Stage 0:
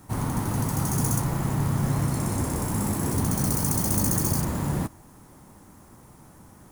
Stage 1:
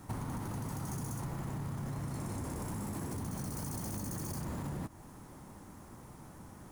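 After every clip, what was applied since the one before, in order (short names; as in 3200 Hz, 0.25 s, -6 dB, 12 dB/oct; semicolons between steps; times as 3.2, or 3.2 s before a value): high shelf 7800 Hz -5.5 dB; limiter -22.5 dBFS, peak gain reduction 10 dB; compressor, threshold -35 dBFS, peak gain reduction 8.5 dB; gain -1 dB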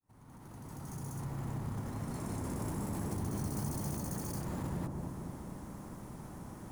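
opening faded in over 2.15 s; in parallel at -2 dB: limiter -37 dBFS, peak gain reduction 7.5 dB; on the sum: dark delay 0.226 s, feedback 70%, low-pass 850 Hz, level -3 dB; gain -3.5 dB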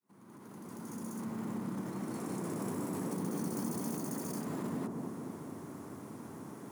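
frequency shift +87 Hz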